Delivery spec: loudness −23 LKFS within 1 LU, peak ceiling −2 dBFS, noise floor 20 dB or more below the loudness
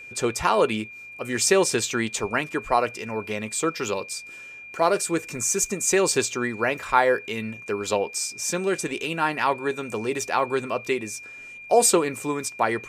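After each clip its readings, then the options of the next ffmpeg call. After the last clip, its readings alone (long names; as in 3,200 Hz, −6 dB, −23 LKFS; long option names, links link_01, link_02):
interfering tone 2,400 Hz; level of the tone −39 dBFS; integrated loudness −24.0 LKFS; sample peak −4.5 dBFS; target loudness −23.0 LKFS
→ -af "bandreject=frequency=2400:width=30"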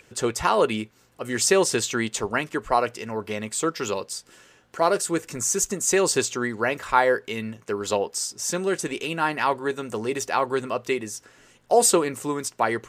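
interfering tone none found; integrated loudness −24.0 LKFS; sample peak −5.0 dBFS; target loudness −23.0 LKFS
→ -af "volume=1dB"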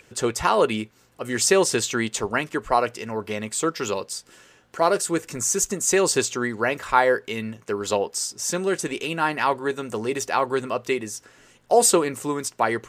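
integrated loudness −23.0 LKFS; sample peak −4.0 dBFS; background noise floor −57 dBFS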